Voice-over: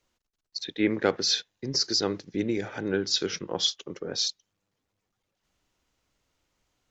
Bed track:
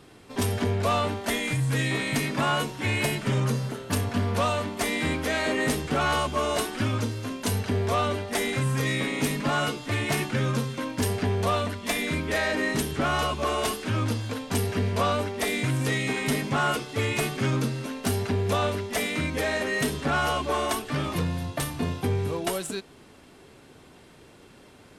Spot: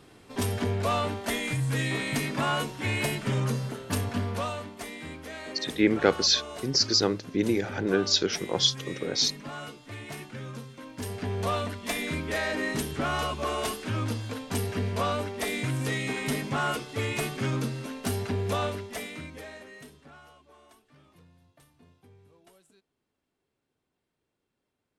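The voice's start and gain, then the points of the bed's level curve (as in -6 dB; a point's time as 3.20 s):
5.00 s, +2.5 dB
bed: 4.10 s -2.5 dB
4.98 s -13.5 dB
10.77 s -13.5 dB
11.46 s -3.5 dB
18.63 s -3.5 dB
20.41 s -30.5 dB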